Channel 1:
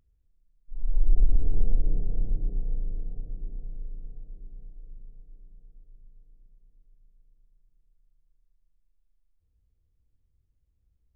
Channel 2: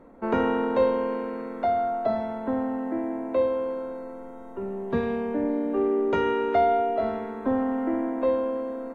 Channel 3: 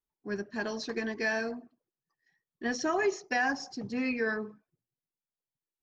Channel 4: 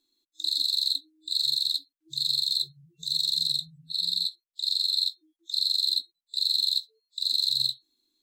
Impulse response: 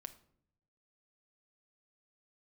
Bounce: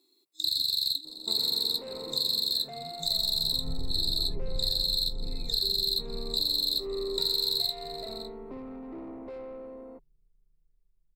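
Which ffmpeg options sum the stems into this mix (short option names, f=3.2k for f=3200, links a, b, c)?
-filter_complex "[0:a]aeval=exprs='0.355*(cos(1*acos(clip(val(0)/0.355,-1,1)))-cos(1*PI/2))+0.1*(cos(5*acos(clip(val(0)/0.355,-1,1)))-cos(5*PI/2))':c=same,adelay=2350,volume=-10dB,afade=t=in:st=3.59:d=0.26:silence=0.375837[a];[1:a]asoftclip=type=tanh:threshold=-29dB,adelay=1050,volume=-11dB[b];[2:a]alimiter=level_in=4dB:limit=-24dB:level=0:latency=1,volume=-4dB,lowpass=3.1k,adelay=1300,volume=-16.5dB[c];[3:a]highpass=290,acontrast=33,volume=3dB,asplit=2[d][e];[e]volume=-22.5dB,aecho=0:1:558:1[f];[a][b][c][d][f]amix=inputs=5:normalize=0,asoftclip=type=tanh:threshold=-11dB,equalizer=f=100:t=o:w=0.33:g=6,equalizer=f=160:t=o:w=0.33:g=10,equalizer=f=400:t=o:w=0.33:g=10,equalizer=f=1.6k:t=o:w=0.33:g=-12,equalizer=f=3.15k:t=o:w=0.33:g=-10,equalizer=f=6.3k:t=o:w=0.33:g=-11,acompressor=threshold=-25dB:ratio=6"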